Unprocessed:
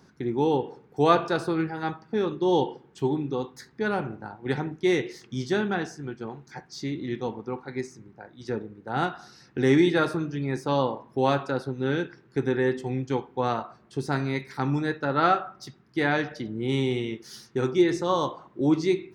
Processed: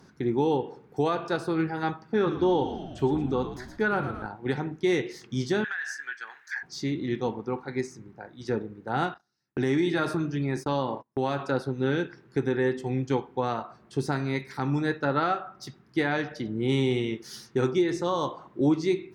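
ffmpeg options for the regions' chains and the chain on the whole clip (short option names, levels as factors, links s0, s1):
-filter_complex "[0:a]asettb=1/sr,asplit=3[s0][s1][s2];[s0]atrim=end=2.144[s3];[s1]atrim=start=2.14:end=4.26,asetpts=PTS-STARTPTS,afade=t=in:d=0.004:c=qsin,afade=t=out:st=2.116:d=0.004:c=qsin,equalizer=f=1400:t=o:w=0.56:g=6.5,asplit=7[s4][s5][s6][s7][s8][s9][s10];[s5]adelay=113,afreqshift=-63,volume=0.266[s11];[s6]adelay=226,afreqshift=-126,volume=0.138[s12];[s7]adelay=339,afreqshift=-189,volume=0.0716[s13];[s8]adelay=452,afreqshift=-252,volume=0.0376[s14];[s9]adelay=565,afreqshift=-315,volume=0.0195[s15];[s10]adelay=678,afreqshift=-378,volume=0.0101[s16];[s4][s11][s12][s13][s14][s15][s16]amix=inputs=7:normalize=0,atrim=end_sample=93492,acrossover=split=3700[s17][s18];[s18]acompressor=threshold=0.00251:ratio=4:attack=1:release=60[s19];[s17][s19]amix=inputs=2:normalize=0[s20];[s2]atrim=start=4.256[s21];[s3][s20]acrossfade=d=0.004:c1=hsin:c2=qsin[s22];[s22][s21]acrossfade=d=0.004:c1=qsin:c2=hsin,asettb=1/sr,asplit=3[s23][s24][s25];[s23]atrim=end=5.644[s26];[s24]atrim=start=5.64:end=6.63,asetpts=PTS-STARTPTS,afade=t=in:d=0.004:c=qsin,afade=t=out:st=0.986:d=0.004:c=qsin,highpass=f=1700:t=q:w=9.7,highshelf=f=5900:g=5,acompressor=threshold=0.0355:ratio=16:attack=3.2:release=140:knee=1:detection=peak[s27];[s25]atrim=start=6.626[s28];[s26][s27]acrossfade=d=0.004:c1=hsin:c2=qsin[s29];[s29][s28]acrossfade=d=0.004:c1=qsin:c2=hsin,asettb=1/sr,asplit=3[s30][s31][s32];[s30]atrim=end=9.144[s33];[s31]atrim=start=9.14:end=11.4,asetpts=PTS-STARTPTS,afade=t=in:d=0.004:c=qsin,afade=t=out:st=2.256:d=0.004:c=qsin,agate=range=0.0316:threshold=0.00708:ratio=16:release=100:detection=peak,bandreject=f=490:w=9.1,acompressor=threshold=0.0562:ratio=2.5:attack=3.2:release=140:knee=1:detection=peak[s34];[s32]atrim=start=11.396[s35];[s33][s34]acrossfade=d=0.004:c1=hsin:c2=qsin[s36];[s36][s35]acrossfade=d=0.004:c1=qsin:c2=hsin,highshelf=f=6100:g=11,alimiter=limit=0.15:level=0:latency=1:release=390,aemphasis=mode=reproduction:type=cd,volume=1.19"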